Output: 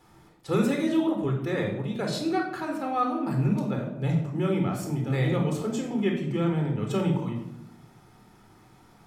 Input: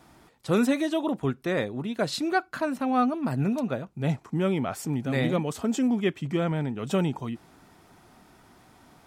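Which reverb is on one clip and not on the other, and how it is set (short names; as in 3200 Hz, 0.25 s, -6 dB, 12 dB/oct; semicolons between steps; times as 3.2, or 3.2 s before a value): shoebox room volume 2000 m³, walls furnished, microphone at 4.1 m; gain -5.5 dB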